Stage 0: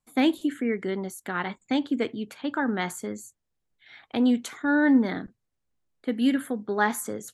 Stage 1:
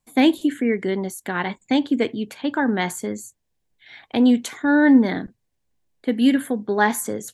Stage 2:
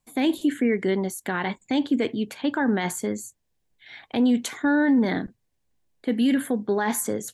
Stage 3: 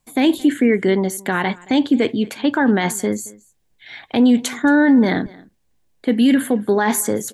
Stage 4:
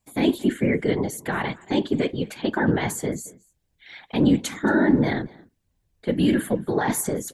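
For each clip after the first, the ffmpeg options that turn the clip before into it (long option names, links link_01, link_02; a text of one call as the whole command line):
ffmpeg -i in.wav -af "equalizer=frequency=1300:width_type=o:width=0.21:gain=-10,volume=6dB" out.wav
ffmpeg -i in.wav -af "alimiter=limit=-14dB:level=0:latency=1:release=22" out.wav
ffmpeg -i in.wav -af "aecho=1:1:224:0.0708,volume=7dB" out.wav
ffmpeg -i in.wav -af "afftfilt=real='hypot(re,im)*cos(2*PI*random(0))':imag='hypot(re,im)*sin(2*PI*random(1))':win_size=512:overlap=0.75" out.wav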